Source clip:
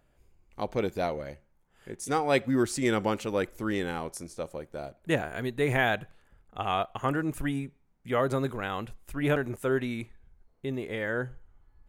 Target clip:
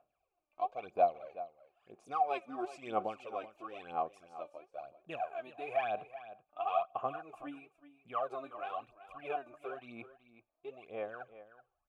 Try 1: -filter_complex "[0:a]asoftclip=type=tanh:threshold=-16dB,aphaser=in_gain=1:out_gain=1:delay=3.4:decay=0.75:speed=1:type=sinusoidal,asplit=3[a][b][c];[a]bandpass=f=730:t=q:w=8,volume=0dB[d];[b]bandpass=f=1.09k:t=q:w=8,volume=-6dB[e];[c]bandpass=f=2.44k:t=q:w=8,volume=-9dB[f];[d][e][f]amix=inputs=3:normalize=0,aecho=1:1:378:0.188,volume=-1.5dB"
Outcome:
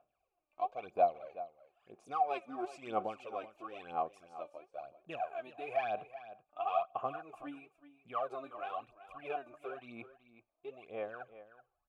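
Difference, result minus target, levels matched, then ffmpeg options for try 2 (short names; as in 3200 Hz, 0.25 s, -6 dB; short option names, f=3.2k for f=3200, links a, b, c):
soft clip: distortion +13 dB
-filter_complex "[0:a]asoftclip=type=tanh:threshold=-8.5dB,aphaser=in_gain=1:out_gain=1:delay=3.4:decay=0.75:speed=1:type=sinusoidal,asplit=3[a][b][c];[a]bandpass=f=730:t=q:w=8,volume=0dB[d];[b]bandpass=f=1.09k:t=q:w=8,volume=-6dB[e];[c]bandpass=f=2.44k:t=q:w=8,volume=-9dB[f];[d][e][f]amix=inputs=3:normalize=0,aecho=1:1:378:0.188,volume=-1.5dB"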